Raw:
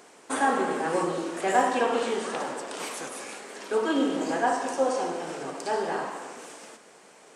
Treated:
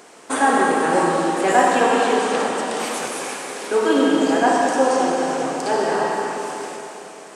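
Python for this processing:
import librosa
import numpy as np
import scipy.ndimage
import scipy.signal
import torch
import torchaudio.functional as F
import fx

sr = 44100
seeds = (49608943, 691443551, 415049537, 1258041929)

y = fx.rev_freeverb(x, sr, rt60_s=3.3, hf_ratio=1.0, predelay_ms=40, drr_db=1.0)
y = y * librosa.db_to_amplitude(6.5)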